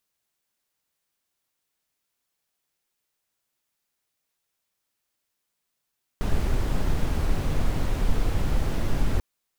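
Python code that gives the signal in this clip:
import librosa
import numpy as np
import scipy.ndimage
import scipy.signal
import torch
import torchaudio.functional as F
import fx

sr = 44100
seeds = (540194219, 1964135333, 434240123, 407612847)

y = fx.noise_colour(sr, seeds[0], length_s=2.99, colour='brown', level_db=-21.5)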